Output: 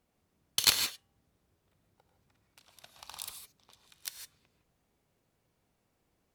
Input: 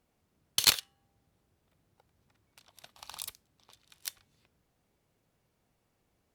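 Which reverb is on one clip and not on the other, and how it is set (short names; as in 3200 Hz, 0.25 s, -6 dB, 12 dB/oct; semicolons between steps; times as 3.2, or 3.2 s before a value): non-linear reverb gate 0.18 s rising, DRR 5.5 dB; gain -1.5 dB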